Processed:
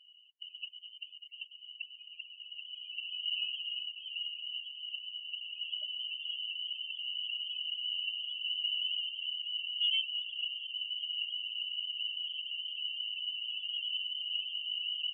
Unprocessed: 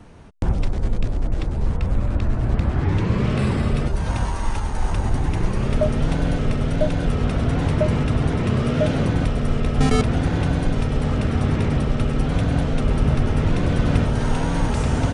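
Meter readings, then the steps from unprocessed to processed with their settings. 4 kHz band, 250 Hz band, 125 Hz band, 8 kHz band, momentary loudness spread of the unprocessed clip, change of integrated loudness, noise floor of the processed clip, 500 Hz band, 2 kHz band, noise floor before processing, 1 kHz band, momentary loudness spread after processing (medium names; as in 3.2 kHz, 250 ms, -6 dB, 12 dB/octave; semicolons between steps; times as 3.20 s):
+7.0 dB, under -40 dB, under -40 dB, under -40 dB, 5 LU, -13.0 dB, -57 dBFS, under -40 dB, -10.0 dB, -25 dBFS, under -40 dB, 13 LU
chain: ladder band-pass 3 kHz, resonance 90%; loudest bins only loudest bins 8; trim +5 dB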